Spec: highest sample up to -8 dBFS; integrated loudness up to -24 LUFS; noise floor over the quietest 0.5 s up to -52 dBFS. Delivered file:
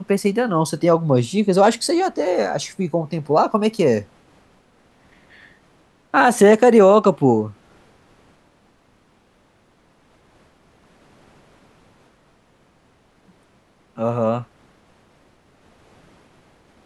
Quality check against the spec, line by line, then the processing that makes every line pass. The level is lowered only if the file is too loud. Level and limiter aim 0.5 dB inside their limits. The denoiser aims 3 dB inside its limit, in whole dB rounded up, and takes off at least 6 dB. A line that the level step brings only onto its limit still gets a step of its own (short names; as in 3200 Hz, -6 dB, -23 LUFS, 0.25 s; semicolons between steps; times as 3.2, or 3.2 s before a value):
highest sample -2.5 dBFS: fail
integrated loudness -17.5 LUFS: fail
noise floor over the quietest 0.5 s -58 dBFS: OK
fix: gain -7 dB